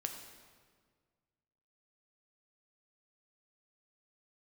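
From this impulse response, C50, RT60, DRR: 6.0 dB, 1.7 s, 4.0 dB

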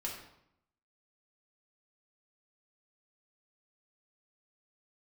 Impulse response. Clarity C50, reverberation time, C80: 4.5 dB, 0.75 s, 7.0 dB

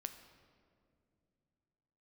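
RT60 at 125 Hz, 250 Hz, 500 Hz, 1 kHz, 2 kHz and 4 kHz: 3.6, 3.3, 2.9, 2.1, 1.7, 1.3 seconds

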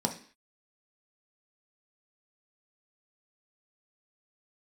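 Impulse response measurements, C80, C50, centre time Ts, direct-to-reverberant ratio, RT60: 16.0 dB, 11.0 dB, 12 ms, 2.5 dB, 0.45 s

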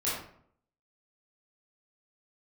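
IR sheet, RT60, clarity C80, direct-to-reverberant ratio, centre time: 0.60 s, 5.0 dB, −9.5 dB, 57 ms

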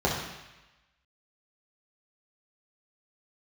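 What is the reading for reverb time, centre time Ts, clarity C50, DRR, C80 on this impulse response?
1.0 s, 49 ms, 3.0 dB, −5.0 dB, 5.5 dB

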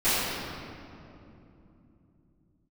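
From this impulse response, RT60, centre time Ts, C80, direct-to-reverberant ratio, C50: 2.9 s, 172 ms, −2.5 dB, −19.0 dB, −4.5 dB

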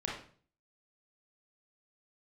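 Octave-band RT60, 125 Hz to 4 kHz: 0.65, 0.55, 0.50, 0.45, 0.40, 0.40 seconds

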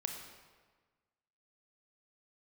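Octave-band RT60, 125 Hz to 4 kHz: 1.6, 1.5, 1.4, 1.4, 1.3, 1.1 seconds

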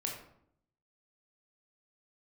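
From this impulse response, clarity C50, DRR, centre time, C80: 4.5 dB, −0.5 dB, 34 ms, 7.5 dB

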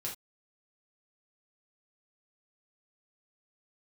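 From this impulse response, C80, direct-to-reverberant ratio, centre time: 16.5 dB, −3.5 dB, 24 ms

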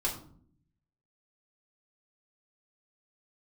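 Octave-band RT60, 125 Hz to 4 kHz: 1.1, 0.95, 0.65, 0.50, 0.35, 0.30 seconds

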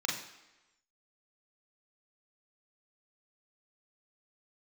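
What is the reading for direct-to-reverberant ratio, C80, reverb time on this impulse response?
−2.5 dB, 8.5 dB, 1.0 s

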